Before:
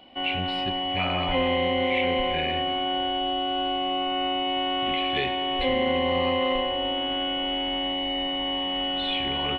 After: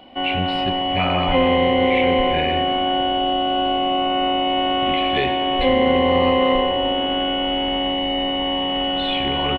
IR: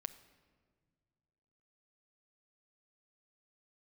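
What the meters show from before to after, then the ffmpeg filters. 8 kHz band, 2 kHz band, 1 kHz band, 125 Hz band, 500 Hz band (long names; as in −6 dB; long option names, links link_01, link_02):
can't be measured, +4.5 dB, +7.5 dB, +7.5 dB, +8.0 dB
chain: -filter_complex "[0:a]asplit=7[link_01][link_02][link_03][link_04][link_05][link_06][link_07];[link_02]adelay=125,afreqshift=-67,volume=-18dB[link_08];[link_03]adelay=250,afreqshift=-134,volume=-21.9dB[link_09];[link_04]adelay=375,afreqshift=-201,volume=-25.8dB[link_10];[link_05]adelay=500,afreqshift=-268,volume=-29.6dB[link_11];[link_06]adelay=625,afreqshift=-335,volume=-33.5dB[link_12];[link_07]adelay=750,afreqshift=-402,volume=-37.4dB[link_13];[link_01][link_08][link_09][link_10][link_11][link_12][link_13]amix=inputs=7:normalize=0,asplit=2[link_14][link_15];[1:a]atrim=start_sample=2205,asetrate=74970,aresample=44100,lowpass=2100[link_16];[link_15][link_16]afir=irnorm=-1:irlink=0,volume=2.5dB[link_17];[link_14][link_17]amix=inputs=2:normalize=0,volume=4dB"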